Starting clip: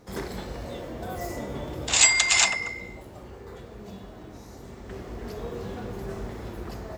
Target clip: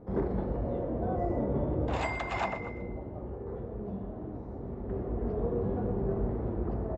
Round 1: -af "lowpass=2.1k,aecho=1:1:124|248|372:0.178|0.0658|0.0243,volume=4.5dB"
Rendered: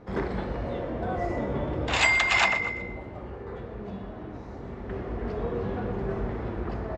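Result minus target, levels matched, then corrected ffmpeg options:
2000 Hz band +10.0 dB
-af "lowpass=700,aecho=1:1:124|248|372:0.178|0.0658|0.0243,volume=4.5dB"

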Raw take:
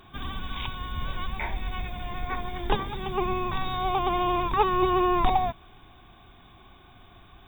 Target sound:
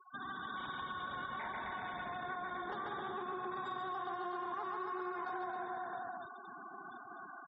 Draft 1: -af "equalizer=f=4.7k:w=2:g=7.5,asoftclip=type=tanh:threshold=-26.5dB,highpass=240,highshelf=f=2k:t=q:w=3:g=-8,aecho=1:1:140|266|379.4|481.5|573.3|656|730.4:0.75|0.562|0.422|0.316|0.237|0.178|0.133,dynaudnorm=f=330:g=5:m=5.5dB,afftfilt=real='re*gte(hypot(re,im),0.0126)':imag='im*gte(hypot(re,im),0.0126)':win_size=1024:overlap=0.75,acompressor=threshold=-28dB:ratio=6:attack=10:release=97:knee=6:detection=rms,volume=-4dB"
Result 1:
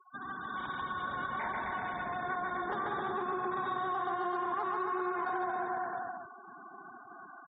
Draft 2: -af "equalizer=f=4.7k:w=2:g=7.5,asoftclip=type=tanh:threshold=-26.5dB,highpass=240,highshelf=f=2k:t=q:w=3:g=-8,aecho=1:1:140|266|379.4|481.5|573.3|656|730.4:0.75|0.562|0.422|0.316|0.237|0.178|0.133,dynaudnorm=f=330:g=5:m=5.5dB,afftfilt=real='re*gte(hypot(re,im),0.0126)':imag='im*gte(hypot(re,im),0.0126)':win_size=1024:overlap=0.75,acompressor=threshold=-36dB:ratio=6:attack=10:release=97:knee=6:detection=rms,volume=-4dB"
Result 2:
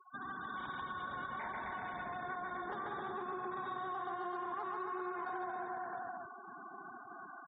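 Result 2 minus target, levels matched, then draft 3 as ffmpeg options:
4000 Hz band -5.5 dB
-af "equalizer=f=4.7k:w=2:g=18,asoftclip=type=tanh:threshold=-26.5dB,highpass=240,highshelf=f=2k:t=q:w=3:g=-8,aecho=1:1:140|266|379.4|481.5|573.3|656|730.4:0.75|0.562|0.422|0.316|0.237|0.178|0.133,dynaudnorm=f=330:g=5:m=5.5dB,afftfilt=real='re*gte(hypot(re,im),0.0126)':imag='im*gte(hypot(re,im),0.0126)':win_size=1024:overlap=0.75,acompressor=threshold=-36dB:ratio=6:attack=10:release=97:knee=6:detection=rms,volume=-4dB"

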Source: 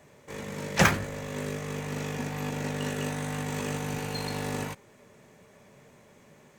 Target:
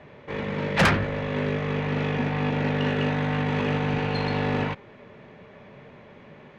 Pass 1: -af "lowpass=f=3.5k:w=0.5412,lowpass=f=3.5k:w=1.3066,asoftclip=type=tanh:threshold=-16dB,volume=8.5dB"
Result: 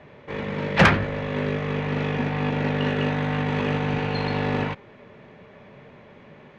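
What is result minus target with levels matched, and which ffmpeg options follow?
soft clip: distortion -6 dB
-af "lowpass=f=3.5k:w=0.5412,lowpass=f=3.5k:w=1.3066,asoftclip=type=tanh:threshold=-23dB,volume=8.5dB"

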